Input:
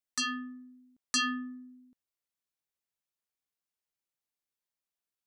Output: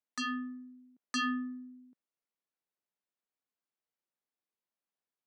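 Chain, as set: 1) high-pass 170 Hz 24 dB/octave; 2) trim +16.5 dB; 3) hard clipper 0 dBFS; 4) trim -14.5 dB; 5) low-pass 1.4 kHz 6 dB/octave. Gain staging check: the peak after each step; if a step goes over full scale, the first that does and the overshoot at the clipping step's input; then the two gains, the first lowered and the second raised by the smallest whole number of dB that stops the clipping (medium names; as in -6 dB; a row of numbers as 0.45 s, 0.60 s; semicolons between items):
-19.0 dBFS, -2.5 dBFS, -2.5 dBFS, -17.0 dBFS, -23.5 dBFS; nothing clips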